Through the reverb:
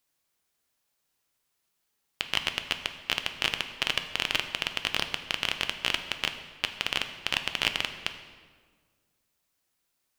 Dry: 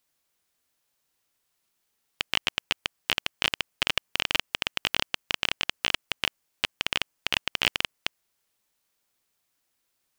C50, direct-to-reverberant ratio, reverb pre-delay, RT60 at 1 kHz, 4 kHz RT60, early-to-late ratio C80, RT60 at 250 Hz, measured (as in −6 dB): 9.5 dB, 7.0 dB, 4 ms, 1.5 s, 1.1 s, 11.0 dB, 2.0 s